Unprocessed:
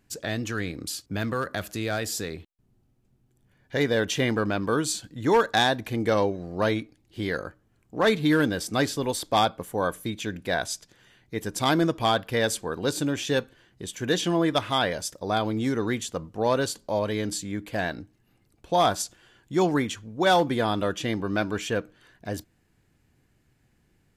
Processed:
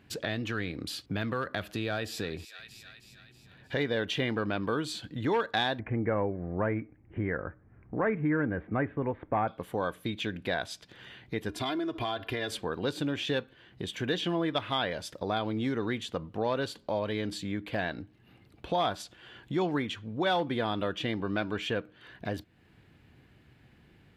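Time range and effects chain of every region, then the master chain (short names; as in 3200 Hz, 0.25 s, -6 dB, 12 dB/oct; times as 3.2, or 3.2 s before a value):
1.73–3.75 notch 2100 Hz, Q 10 + thin delay 0.317 s, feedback 55%, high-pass 1700 Hz, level -15.5 dB
5.79–9.48 steep low-pass 2200 Hz 48 dB/oct + low shelf 92 Hz +11 dB
11.49–12.52 comb 2.9 ms, depth 82% + compressor 5:1, threshold -27 dBFS
whole clip: HPF 52 Hz; resonant high shelf 4800 Hz -10.5 dB, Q 1.5; compressor 2:1, threshold -46 dBFS; gain +7.5 dB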